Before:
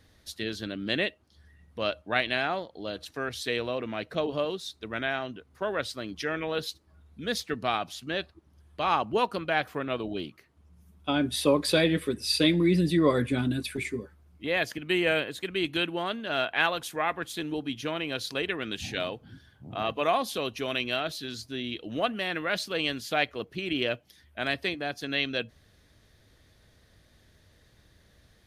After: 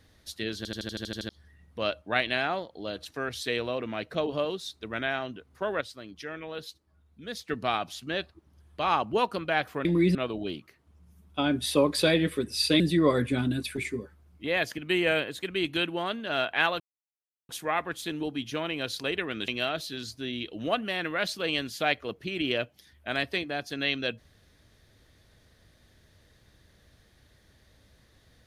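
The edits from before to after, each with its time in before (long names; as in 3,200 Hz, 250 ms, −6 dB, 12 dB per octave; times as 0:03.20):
0:00.57: stutter in place 0.08 s, 9 plays
0:05.81–0:07.48: clip gain −7.5 dB
0:12.50–0:12.80: move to 0:09.85
0:16.80: splice in silence 0.69 s
0:18.79–0:20.79: remove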